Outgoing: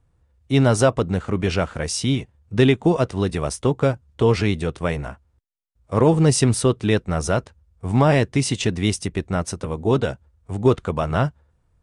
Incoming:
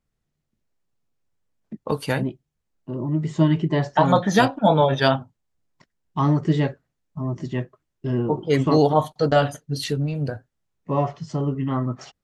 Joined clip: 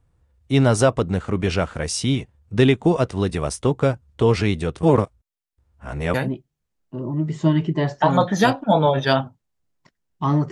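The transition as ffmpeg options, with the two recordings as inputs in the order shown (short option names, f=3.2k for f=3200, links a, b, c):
-filter_complex "[0:a]apad=whole_dur=10.51,atrim=end=10.51,asplit=2[a][b];[a]atrim=end=4.832[c];[b]atrim=start=4.828:end=6.142,asetpts=PTS-STARTPTS,areverse[d];[1:a]atrim=start=2.088:end=6.46[e];[c][d]acrossfade=d=0.004:c1=hsin:c2=hsin[f];[f][e]acrossfade=d=0.004:c1=hsin:c2=hsin"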